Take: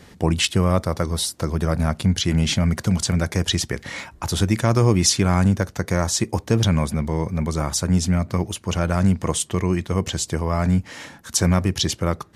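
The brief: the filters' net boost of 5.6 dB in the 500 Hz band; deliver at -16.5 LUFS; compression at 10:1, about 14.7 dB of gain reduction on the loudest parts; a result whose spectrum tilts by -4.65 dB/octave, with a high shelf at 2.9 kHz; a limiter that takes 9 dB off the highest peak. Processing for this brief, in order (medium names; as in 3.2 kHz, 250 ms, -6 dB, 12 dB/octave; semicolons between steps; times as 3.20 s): peaking EQ 500 Hz +7 dB; treble shelf 2.9 kHz -3.5 dB; compression 10:1, threshold -26 dBFS; trim +17.5 dB; peak limiter -4 dBFS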